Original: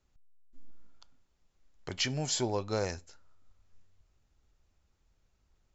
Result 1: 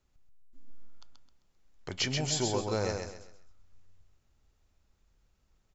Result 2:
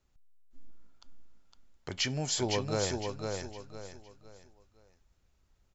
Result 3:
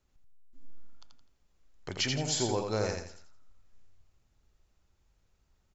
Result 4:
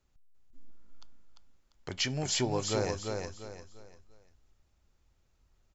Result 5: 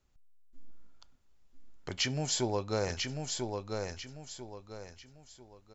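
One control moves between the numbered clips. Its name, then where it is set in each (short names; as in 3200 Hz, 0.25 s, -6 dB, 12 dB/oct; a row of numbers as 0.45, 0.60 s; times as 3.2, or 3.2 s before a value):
feedback echo, time: 131, 509, 84, 346, 994 ms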